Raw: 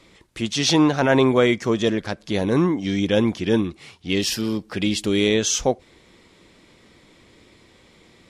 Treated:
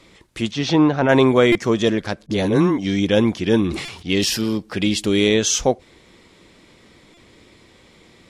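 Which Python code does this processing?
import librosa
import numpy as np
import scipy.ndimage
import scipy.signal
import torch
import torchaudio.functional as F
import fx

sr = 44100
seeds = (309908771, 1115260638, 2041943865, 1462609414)

y = fx.spacing_loss(x, sr, db_at_10k=21, at=(0.51, 1.09))
y = fx.dispersion(y, sr, late='highs', ms=41.0, hz=560.0, at=(2.26, 2.78))
y = fx.buffer_glitch(y, sr, at_s=(1.52, 3.85, 7.14), block=128, repeats=10)
y = fx.sustainer(y, sr, db_per_s=60.0, at=(3.59, 4.44))
y = y * 10.0 ** (2.5 / 20.0)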